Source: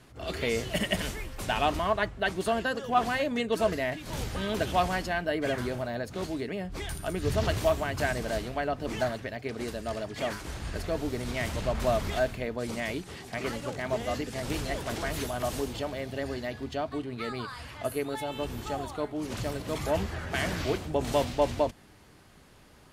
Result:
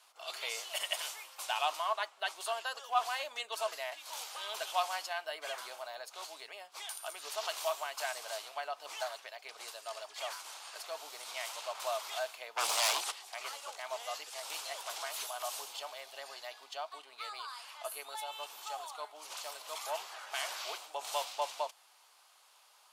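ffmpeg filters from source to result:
ffmpeg -i in.wav -filter_complex "[0:a]asplit=3[link_01][link_02][link_03];[link_01]afade=type=out:start_time=12.56:duration=0.02[link_04];[link_02]aeval=exprs='0.1*sin(PI/2*3.98*val(0)/0.1)':channel_layout=same,afade=type=in:start_time=12.56:duration=0.02,afade=type=out:start_time=13.1:duration=0.02[link_05];[link_03]afade=type=in:start_time=13.1:duration=0.02[link_06];[link_04][link_05][link_06]amix=inputs=3:normalize=0,highpass=frequency=840:width=0.5412,highpass=frequency=840:width=1.3066,equalizer=frequency=1800:width_type=o:width=0.74:gain=-11" out.wav

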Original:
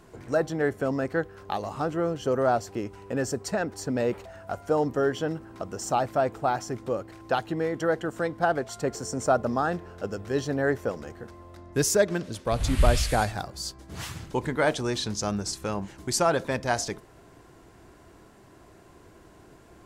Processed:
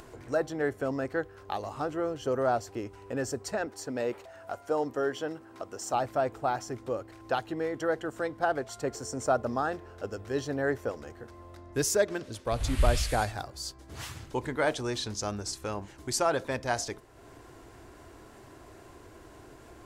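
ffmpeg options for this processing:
ffmpeg -i in.wav -filter_complex "[0:a]asettb=1/sr,asplit=3[link_01][link_02][link_03];[link_01]atrim=end=3.664[link_04];[link_02]atrim=start=3.66:end=5.94,asetpts=PTS-STARTPTS,afade=type=in:duration=0.004:curve=qsin,afade=type=out:start_time=2.276:duration=0.004:curve=qsin,highpass=frequency=240:poles=1[link_05];[link_03]atrim=start=5.936[link_06];[link_04][link_05]acrossfade=duration=0.004:curve1=hsin:curve2=qsin[link_07];[link_07][link_06]acrossfade=duration=0.004:curve1=qsin:curve2=hsin,equalizer=frequency=180:width_type=o:width=0.31:gain=-13,acompressor=mode=upward:threshold=-39dB:ratio=2.5,volume=-3.5dB" out.wav

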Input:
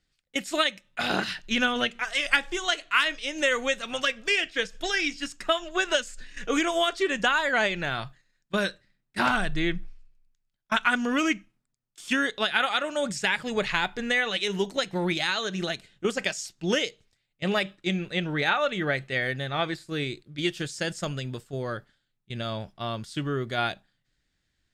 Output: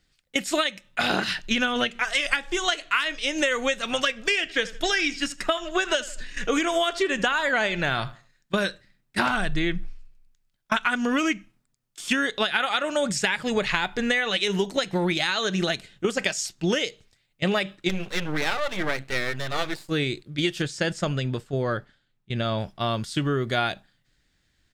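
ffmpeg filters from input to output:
ffmpeg -i in.wav -filter_complex "[0:a]asplit=3[link_01][link_02][link_03];[link_01]afade=type=out:start_time=4.48:duration=0.02[link_04];[link_02]asplit=2[link_05][link_06];[link_06]adelay=79,lowpass=frequency=4000:poles=1,volume=-19dB,asplit=2[link_07][link_08];[link_08]adelay=79,lowpass=frequency=4000:poles=1,volume=0.32,asplit=2[link_09][link_10];[link_10]adelay=79,lowpass=frequency=4000:poles=1,volume=0.32[link_11];[link_05][link_07][link_09][link_11]amix=inputs=4:normalize=0,afade=type=in:start_time=4.48:duration=0.02,afade=type=out:start_time=8.63:duration=0.02[link_12];[link_03]afade=type=in:start_time=8.63:duration=0.02[link_13];[link_04][link_12][link_13]amix=inputs=3:normalize=0,asplit=3[link_14][link_15][link_16];[link_14]afade=type=out:start_time=17.88:duration=0.02[link_17];[link_15]aeval=exprs='max(val(0),0)':channel_layout=same,afade=type=in:start_time=17.88:duration=0.02,afade=type=out:start_time=19.89:duration=0.02[link_18];[link_16]afade=type=in:start_time=19.89:duration=0.02[link_19];[link_17][link_18][link_19]amix=inputs=3:normalize=0,asettb=1/sr,asplit=3[link_20][link_21][link_22];[link_20]atrim=end=20.624[link_23];[link_21]atrim=start=20.62:end=22.58,asetpts=PTS-STARTPTS,afade=type=in:duration=0.004:curve=qsin,afade=type=out:start_time=1.956:duration=0.004:curve=qsin,lowpass=frequency=3600:poles=1[link_24];[link_22]atrim=start=22.576[link_25];[link_23][link_24]acrossfade=duration=0.004:curve1=hsin:curve2=qsin[link_26];[link_26][link_25]acrossfade=duration=0.004:curve1=qsin:curve2=hsin,acompressor=threshold=-27dB:ratio=6,volume=7dB" out.wav

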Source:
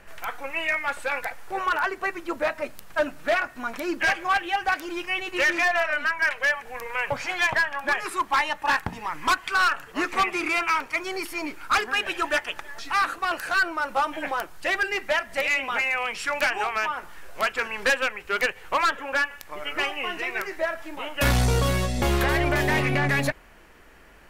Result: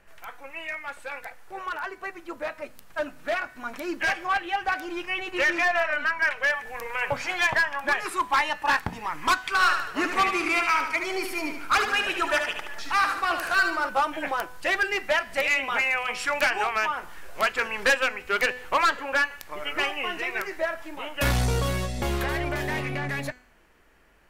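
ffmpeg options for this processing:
ffmpeg -i in.wav -filter_complex "[0:a]asettb=1/sr,asplit=3[link_01][link_02][link_03];[link_01]atrim=end=4.254[link_04];[link_02]atrim=start=4.25:end=6.5,asetpts=PTS-STARTPTS,afade=type=in:duration=0.004:curve=qsin,afade=type=out:start_time=2.246:duration=0.004:curve=qsin,highshelf=frequency=4600:gain=-5.5[link_05];[link_03]atrim=start=6.496[link_06];[link_04][link_05]acrossfade=duration=0.004:curve1=hsin:curve2=qsin[link_07];[link_07][link_06]acrossfade=duration=0.004:curve1=qsin:curve2=hsin,asettb=1/sr,asplit=3[link_08][link_09][link_10];[link_08]atrim=end=9.444[link_11];[link_09]atrim=start=9.44:end=13.89,asetpts=PTS-STARTPTS,afade=type=in:duration=0.004:curve=qsin,afade=type=out:start_time=4.446:duration=0.004:curve=qsin,aecho=1:1:74|148|222|296|370|444:0.447|0.214|0.103|0.0494|0.0237|0.0114,atrim=end_sample=196245[link_12];[link_10]atrim=start=13.886[link_13];[link_11][link_12]acrossfade=duration=0.004:curve1=hsin:curve2=qsin[link_14];[link_14][link_13]acrossfade=duration=0.004:curve1=qsin:curve2=hsin,bandreject=frequency=250:width_type=h:width=4,bandreject=frequency=500:width_type=h:width=4,bandreject=frequency=750:width_type=h:width=4,bandreject=frequency=1000:width_type=h:width=4,bandreject=frequency=1250:width_type=h:width=4,bandreject=frequency=1500:width_type=h:width=4,bandreject=frequency=1750:width_type=h:width=4,bandreject=frequency=2000:width_type=h:width=4,bandreject=frequency=2250:width_type=h:width=4,bandreject=frequency=2500:width_type=h:width=4,bandreject=frequency=2750:width_type=h:width=4,bandreject=frequency=3000:width_type=h:width=4,bandreject=frequency=3250:width_type=h:width=4,bandreject=frequency=3500:width_type=h:width=4,bandreject=frequency=3750:width_type=h:width=4,bandreject=frequency=4000:width_type=h:width=4,bandreject=frequency=4250:width_type=h:width=4,bandreject=frequency=4500:width_type=h:width=4,bandreject=frequency=4750:width_type=h:width=4,bandreject=frequency=5000:width_type=h:width=4,bandreject=frequency=5250:width_type=h:width=4,bandreject=frequency=5500:width_type=h:width=4,bandreject=frequency=5750:width_type=h:width=4,bandreject=frequency=6000:width_type=h:width=4,bandreject=frequency=6250:width_type=h:width=4,bandreject=frequency=6500:width_type=h:width=4,bandreject=frequency=6750:width_type=h:width=4,bandreject=frequency=7000:width_type=h:width=4,bandreject=frequency=7250:width_type=h:width=4,bandreject=frequency=7500:width_type=h:width=4,bandreject=frequency=7750:width_type=h:width=4,bandreject=frequency=8000:width_type=h:width=4,bandreject=frequency=8250:width_type=h:width=4,bandreject=frequency=8500:width_type=h:width=4,bandreject=frequency=8750:width_type=h:width=4,dynaudnorm=framelen=620:gausssize=13:maxgain=10dB,volume=-8.5dB" out.wav

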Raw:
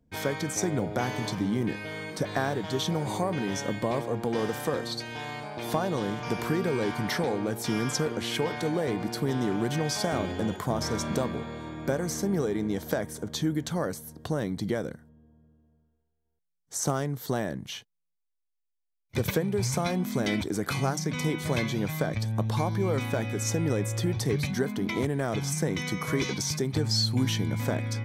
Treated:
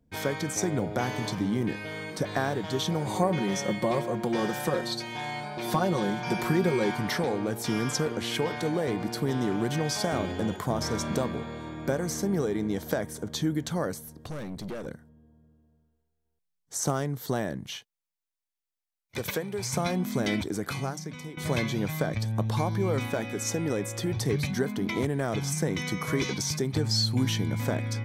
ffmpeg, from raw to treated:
ffmpeg -i in.wav -filter_complex "[0:a]asettb=1/sr,asplit=3[link_01][link_02][link_03];[link_01]atrim=end=3.154[link_04];[link_02]atrim=start=3.15:end=6.96,asetpts=PTS-STARTPTS,afade=type=in:duration=0.004:curve=qsin,afade=type=out:start_time=3.806:duration=0.004:curve=qsin,aecho=1:1:5.5:0.7,atrim=end_sample=168021[link_05];[link_03]atrim=start=6.956[link_06];[link_04][link_05]acrossfade=duration=0.004:curve1=hsin:curve2=qsin[link_07];[link_07][link_06]acrossfade=duration=0.004:curve1=qsin:curve2=hsin,asettb=1/sr,asplit=3[link_08][link_09][link_10];[link_08]atrim=end=14.064[link_11];[link_09]atrim=start=14.06:end=14.87,asetpts=PTS-STARTPTS,afade=type=in:duration=0.004:curve=qsin,afade=type=out:start_time=0.806:duration=0.004:curve=qsin,aeval=exprs='(tanh(44.7*val(0)+0.35)-tanh(0.35))/44.7':channel_layout=same[link_12];[link_10]atrim=start=14.866[link_13];[link_11][link_12]acrossfade=duration=0.004:curve1=hsin:curve2=qsin[link_14];[link_14][link_13]acrossfade=duration=0.004:curve1=qsin:curve2=hsin,asettb=1/sr,asplit=3[link_15][link_16][link_17];[link_15]atrim=end=17.764[link_18];[link_16]atrim=start=17.76:end=19.73,asetpts=PTS-STARTPTS,afade=type=in:duration=0.004:curve=qsin,afade=type=out:start_time=1.966:duration=0.004:curve=qsin,lowshelf=frequency=320:gain=-11[link_19];[link_17]atrim=start=19.726[link_20];[link_18][link_19]acrossfade=duration=0.004:curve1=hsin:curve2=qsin[link_21];[link_21][link_20]acrossfade=duration=0.004:curve1=qsin:curve2=hsin,asettb=1/sr,asplit=3[link_22][link_23][link_24];[link_22]atrim=end=23.074[link_25];[link_23]atrim=start=23.07:end=24.12,asetpts=PTS-STARTPTS,afade=type=in:duration=0.004:curve=qsin,afade=type=out:start_time=1.046:duration=0.004:curve=qsin,equalizer=frequency=100:width_type=o:width=0.93:gain=-9[link_26];[link_24]atrim=start=24.116[link_27];[link_25][link_26]acrossfade=duration=0.004:curve1=hsin:curve2=qsin[link_28];[link_28][link_27]acrossfade=duration=0.004:curve1=qsin:curve2=hsin,asplit=2[link_29][link_30];[link_29]atrim=end=21.37,asetpts=PTS-STARTPTS,afade=type=out:start_time=20.34:duration=1.03:silence=0.158489[link_31];[link_30]atrim=start=21.37,asetpts=PTS-STARTPTS,afade=type=in:duration=0.004:curve=hsin:silence=0.158489[link_32];[link_31][link_32]concat=n=2:v=0:a=1" out.wav

